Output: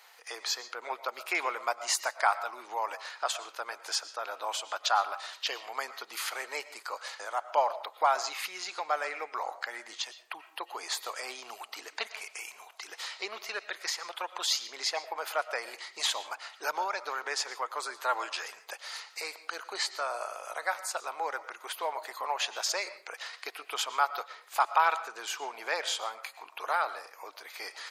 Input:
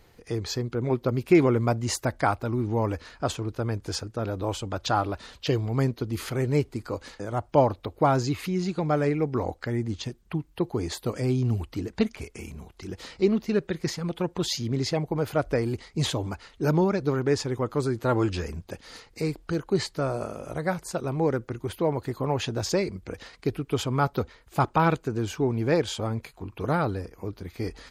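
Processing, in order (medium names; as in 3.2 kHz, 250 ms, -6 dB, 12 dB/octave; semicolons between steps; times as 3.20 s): high-pass 780 Hz 24 dB/octave; in parallel at +1 dB: compression, threshold -45 dBFS, peak gain reduction 22.5 dB; on the sum: reverberation RT60 0.45 s, pre-delay 75 ms, DRR 14 dB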